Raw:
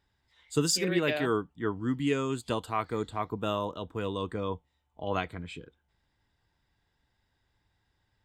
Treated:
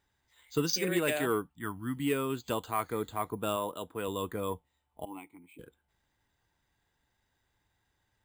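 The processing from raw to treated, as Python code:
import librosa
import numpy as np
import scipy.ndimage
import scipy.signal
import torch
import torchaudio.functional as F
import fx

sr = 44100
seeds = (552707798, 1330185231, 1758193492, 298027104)

y = fx.peak_eq(x, sr, hz=460.0, db=-14.5, octaves=0.82, at=(1.48, 1.97))
y = fx.highpass(y, sr, hz=170.0, slope=6, at=(3.56, 4.08))
y = fx.low_shelf(y, sr, hz=220.0, db=-5.0)
y = fx.vowel_filter(y, sr, vowel='u', at=(5.05, 5.59))
y = 10.0 ** (-16.5 / 20.0) * np.tanh(y / 10.0 ** (-16.5 / 20.0))
y = np.repeat(scipy.signal.resample_poly(y, 1, 4), 4)[:len(y)]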